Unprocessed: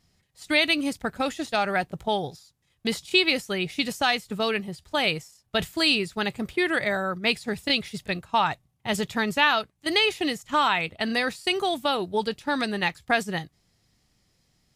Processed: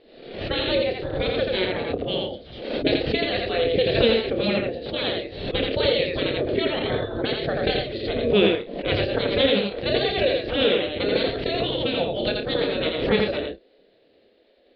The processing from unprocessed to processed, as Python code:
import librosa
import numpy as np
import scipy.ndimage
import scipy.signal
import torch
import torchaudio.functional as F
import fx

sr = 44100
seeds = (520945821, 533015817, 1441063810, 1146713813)

y = fx.pitch_heads(x, sr, semitones=-1.5)
y = fx.spec_gate(y, sr, threshold_db=-15, keep='weak')
y = scipy.signal.sosfilt(scipy.signal.butter(12, 4300.0, 'lowpass', fs=sr, output='sos'), y)
y = fx.low_shelf_res(y, sr, hz=720.0, db=11.5, q=3.0)
y = fx.doubler(y, sr, ms=30.0, db=-9.0)
y = y + 10.0 ** (-3.0 / 20.0) * np.pad(y, (int(84 * sr / 1000.0), 0))[:len(y)]
y = fx.pre_swell(y, sr, db_per_s=65.0)
y = y * librosa.db_to_amplitude(7.5)